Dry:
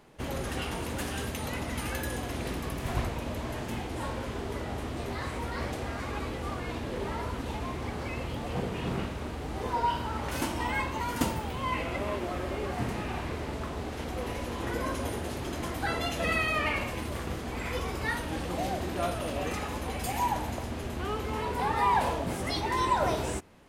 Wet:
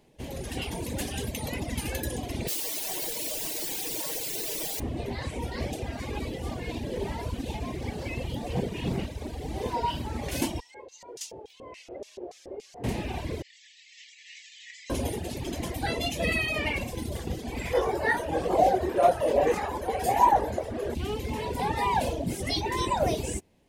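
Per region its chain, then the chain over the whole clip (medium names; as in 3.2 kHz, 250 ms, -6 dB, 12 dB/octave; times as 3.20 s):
2.48–4.80 s: ladder high-pass 290 Hz, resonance 30% + word length cut 6-bit, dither triangular + comb 6.4 ms, depth 49%
10.60–12.84 s: peaking EQ 210 Hz -12 dB 1.3 oct + LFO band-pass square 3.5 Hz 420–6000 Hz
13.42–14.90 s: brick-wall FIR band-pass 1.7–8 kHz + detune thickener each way 27 cents
17.73–20.95 s: high-order bell 820 Hz +13.5 dB 2.6 oct + detune thickener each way 40 cents
whole clip: reverb removal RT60 1.5 s; peaking EQ 1.3 kHz -15 dB 0.71 oct; level rider gain up to 8 dB; trim -2.5 dB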